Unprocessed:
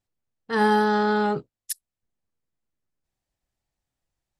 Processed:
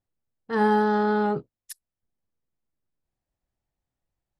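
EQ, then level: high shelf 2100 Hz -10.5 dB; 0.0 dB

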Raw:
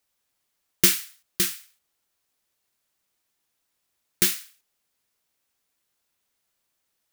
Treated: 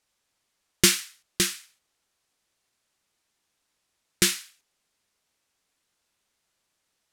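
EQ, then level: LPF 9400 Hz 12 dB/oct; +3.0 dB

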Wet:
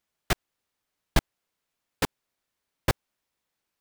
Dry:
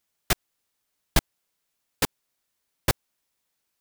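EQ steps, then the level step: high shelf 4500 Hz -8.5 dB; 0.0 dB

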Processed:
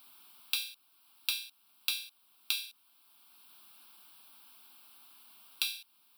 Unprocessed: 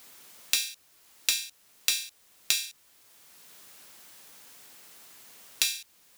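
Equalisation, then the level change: HPF 210 Hz 24 dB/oct; fixed phaser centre 1900 Hz, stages 6; -3.5 dB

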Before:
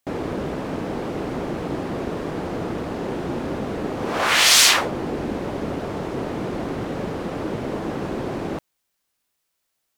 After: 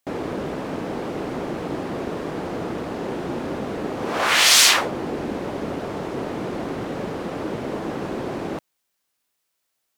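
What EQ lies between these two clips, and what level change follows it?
low shelf 110 Hz -7.5 dB; 0.0 dB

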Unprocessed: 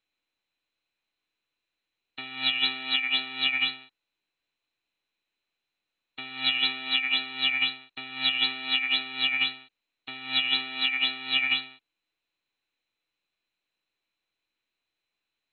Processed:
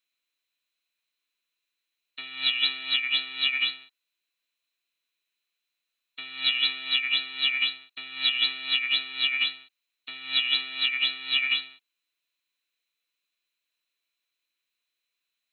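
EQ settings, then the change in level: Butterworth band-stop 830 Hz, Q 5.3; tilt +3 dB/oct; -4.0 dB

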